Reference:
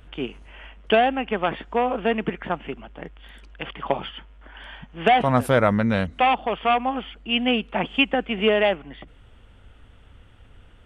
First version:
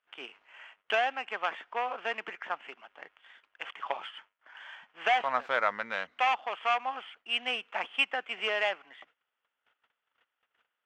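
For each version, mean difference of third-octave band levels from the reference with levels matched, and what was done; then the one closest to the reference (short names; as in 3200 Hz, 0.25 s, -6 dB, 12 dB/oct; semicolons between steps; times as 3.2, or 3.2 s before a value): 7.5 dB: median filter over 9 samples; gate -45 dBFS, range -19 dB; HPF 1100 Hz 12 dB/oct; air absorption 180 m; gain -1 dB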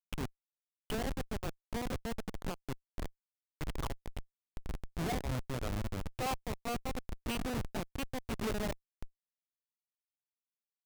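15.0 dB: shoebox room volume 81 m³, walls mixed, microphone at 0.32 m; compressor 20:1, threshold -30 dBFS, peak gain reduction 20.5 dB; Schmitt trigger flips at -30.5 dBFS; limiter -35 dBFS, peak gain reduction 4 dB; gain +4 dB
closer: first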